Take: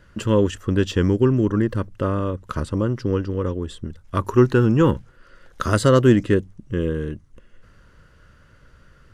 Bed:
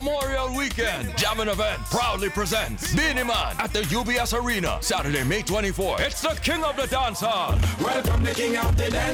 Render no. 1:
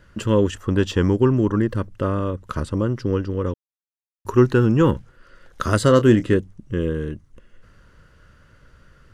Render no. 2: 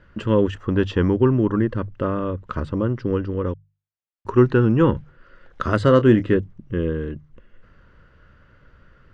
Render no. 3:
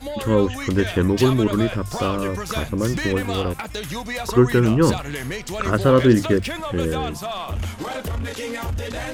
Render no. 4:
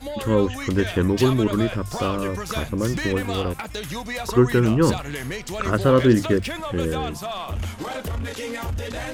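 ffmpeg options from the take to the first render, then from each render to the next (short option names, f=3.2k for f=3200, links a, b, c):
-filter_complex "[0:a]asettb=1/sr,asplit=3[a][b][c];[a]atrim=end=0.534[d];[b]atrim=start=0.53:end=1.57,asetpts=PTS-STARTPTS,afade=t=in:d=0.004:c=qsin,afade=t=out:st=1.036:d=0.004:c=qsin,equalizer=f=900:t=o:w=0.77:g=5.5[e];[c]atrim=start=1.566[f];[d][e]acrossfade=d=0.004:c1=hsin:c2=qsin[g];[g][f]acrossfade=d=0.004:c1=qsin:c2=hsin,asettb=1/sr,asplit=3[h][i][j];[h]atrim=end=5.864[k];[i]atrim=start=5.86:end=6.37,asetpts=PTS-STARTPTS,afade=t=in:d=0.004:c=qsin,afade=t=out:st=0.506:d=0.004:c=qsin,asplit=2[l][m];[m]adelay=27,volume=-11.5dB[n];[l][n]amix=inputs=2:normalize=0,atrim=end_sample=22491[o];[j]atrim=start=6.366[p];[k][o]acrossfade=d=0.004:c1=hsin:c2=qsin[q];[q][p]acrossfade=d=0.004:c1=qsin:c2=hsin,asplit=3[r][s][t];[r]atrim=end=3.54,asetpts=PTS-STARTPTS,afade=t=out:st=3.536:d=0.004:c=hsin[u];[s]atrim=start=3.54:end=4.25,asetpts=PTS-STARTPTS,volume=0[v];[t]atrim=start=4.25,asetpts=PTS-STARTPTS,afade=t=in:d=0.004:c=hsin[w];[u][v][w]concat=n=3:v=0:a=1"
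-af "lowpass=3k,bandreject=f=50:t=h:w=6,bandreject=f=100:t=h:w=6,bandreject=f=150:t=h:w=6"
-filter_complex "[1:a]volume=-5dB[a];[0:a][a]amix=inputs=2:normalize=0"
-af "volume=-1.5dB"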